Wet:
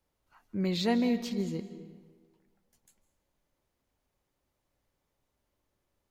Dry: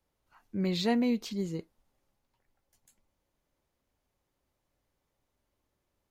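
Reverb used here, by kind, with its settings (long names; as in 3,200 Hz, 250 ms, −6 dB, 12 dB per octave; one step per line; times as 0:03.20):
comb and all-pass reverb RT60 1.6 s, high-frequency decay 0.7×, pre-delay 120 ms, DRR 12 dB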